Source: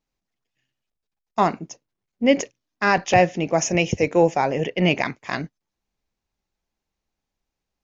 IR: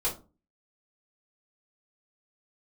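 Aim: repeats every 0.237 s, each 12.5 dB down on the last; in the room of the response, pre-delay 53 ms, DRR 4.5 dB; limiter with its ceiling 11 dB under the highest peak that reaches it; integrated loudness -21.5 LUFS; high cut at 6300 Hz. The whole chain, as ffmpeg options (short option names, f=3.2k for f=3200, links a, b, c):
-filter_complex "[0:a]lowpass=6.3k,alimiter=limit=-15.5dB:level=0:latency=1,aecho=1:1:237|474|711:0.237|0.0569|0.0137,asplit=2[a][b];[1:a]atrim=start_sample=2205,adelay=53[c];[b][c]afir=irnorm=-1:irlink=0,volume=-11.5dB[d];[a][d]amix=inputs=2:normalize=0,volume=5dB"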